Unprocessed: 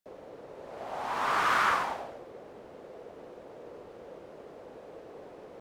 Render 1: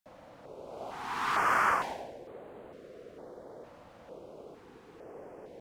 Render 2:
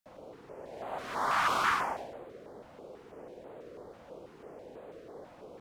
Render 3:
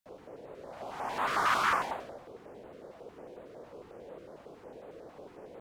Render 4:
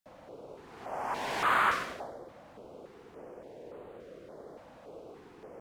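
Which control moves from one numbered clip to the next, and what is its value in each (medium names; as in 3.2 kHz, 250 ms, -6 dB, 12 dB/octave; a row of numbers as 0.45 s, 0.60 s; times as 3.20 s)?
step-sequenced notch, rate: 2.2 Hz, 6.1 Hz, 11 Hz, 3.5 Hz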